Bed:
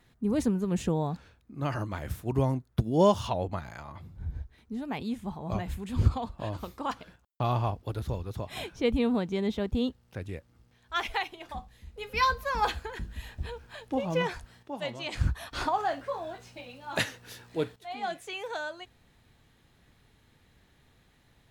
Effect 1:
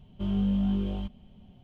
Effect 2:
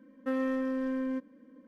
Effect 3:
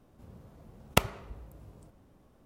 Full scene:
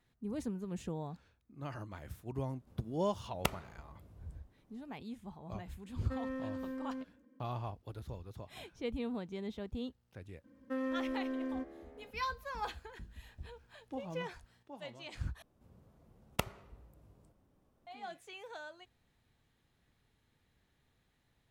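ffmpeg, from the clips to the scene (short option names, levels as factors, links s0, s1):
-filter_complex "[3:a]asplit=2[s0][s1];[2:a]asplit=2[s2][s3];[0:a]volume=0.251[s4];[s3]asplit=7[s5][s6][s7][s8][s9][s10][s11];[s6]adelay=208,afreqshift=75,volume=0.141[s12];[s7]adelay=416,afreqshift=150,volume=0.0851[s13];[s8]adelay=624,afreqshift=225,volume=0.0507[s14];[s9]adelay=832,afreqshift=300,volume=0.0305[s15];[s10]adelay=1040,afreqshift=375,volume=0.0184[s16];[s11]adelay=1248,afreqshift=450,volume=0.011[s17];[s5][s12][s13][s14][s15][s16][s17]amix=inputs=7:normalize=0[s18];[s4]asplit=2[s19][s20];[s19]atrim=end=15.424[s21];[s1]atrim=end=2.45,asetpts=PTS-STARTPTS,volume=0.299[s22];[s20]atrim=start=17.866[s23];[s0]atrim=end=2.45,asetpts=PTS-STARTPTS,volume=0.355,afade=t=in:d=0.004:c=hsin,afade=t=out:st=2.446:d=0.004:c=hsin,adelay=2480[s24];[s2]atrim=end=1.67,asetpts=PTS-STARTPTS,volume=0.335,afade=t=in:d=0.004:c=hsin,afade=t=out:st=1.666:d=0.004:c=hsin,adelay=5840[s25];[s18]atrim=end=1.67,asetpts=PTS-STARTPTS,volume=0.501,afade=t=in:d=0.004:c=hsin,afade=t=out:st=1.666:d=0.004:c=hsin,adelay=10440[s26];[s21][s22]acrossfade=d=0.004:c1=hsin:c2=hsin[s27];[s27][s23]acrossfade=d=0.004:c1=hsin:c2=hsin[s28];[s28][s24][s25][s26]amix=inputs=4:normalize=0"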